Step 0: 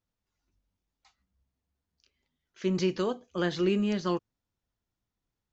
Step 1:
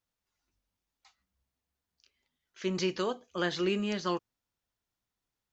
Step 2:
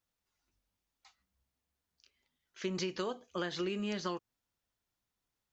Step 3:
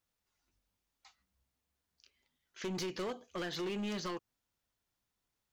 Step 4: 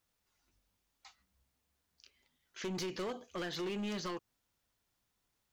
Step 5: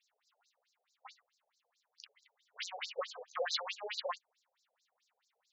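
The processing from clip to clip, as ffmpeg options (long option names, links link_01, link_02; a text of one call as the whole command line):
ffmpeg -i in.wav -af "lowshelf=frequency=430:gain=-9,volume=2dB" out.wav
ffmpeg -i in.wav -af "acompressor=threshold=-32dB:ratio=10" out.wav
ffmpeg -i in.wav -af "asoftclip=type=hard:threshold=-35.5dB,volume=1dB" out.wav
ffmpeg -i in.wav -af "alimiter=level_in=15dB:limit=-24dB:level=0:latency=1:release=27,volume=-15dB,volume=4dB" out.wav
ffmpeg -i in.wav -af "afftfilt=real='re*between(b*sr/1024,550*pow(5600/550,0.5+0.5*sin(2*PI*4.6*pts/sr))/1.41,550*pow(5600/550,0.5+0.5*sin(2*PI*4.6*pts/sr))*1.41)':imag='im*between(b*sr/1024,550*pow(5600/550,0.5+0.5*sin(2*PI*4.6*pts/sr))/1.41,550*pow(5600/550,0.5+0.5*sin(2*PI*4.6*pts/sr))*1.41)':win_size=1024:overlap=0.75,volume=11dB" out.wav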